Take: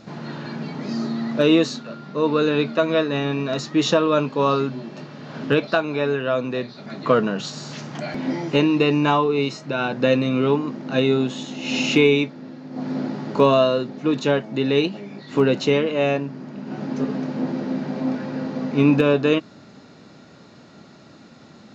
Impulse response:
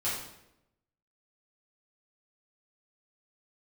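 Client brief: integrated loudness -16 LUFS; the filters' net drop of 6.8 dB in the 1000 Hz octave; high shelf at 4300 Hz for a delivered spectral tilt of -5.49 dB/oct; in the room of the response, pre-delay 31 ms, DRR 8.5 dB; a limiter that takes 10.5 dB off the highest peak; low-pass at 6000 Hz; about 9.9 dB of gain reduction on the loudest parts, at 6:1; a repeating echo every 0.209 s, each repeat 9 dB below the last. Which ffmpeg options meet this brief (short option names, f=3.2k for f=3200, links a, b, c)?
-filter_complex "[0:a]lowpass=6k,equalizer=f=1k:t=o:g=-8.5,highshelf=f=4.3k:g=-5.5,acompressor=threshold=-23dB:ratio=6,alimiter=limit=-22.5dB:level=0:latency=1,aecho=1:1:209|418|627|836:0.355|0.124|0.0435|0.0152,asplit=2[a][b];[1:a]atrim=start_sample=2205,adelay=31[c];[b][c]afir=irnorm=-1:irlink=0,volume=-15.5dB[d];[a][d]amix=inputs=2:normalize=0,volume=15dB"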